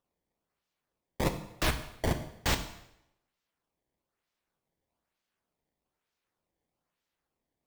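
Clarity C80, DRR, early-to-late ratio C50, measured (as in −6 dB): 13.0 dB, 7.0 dB, 11.0 dB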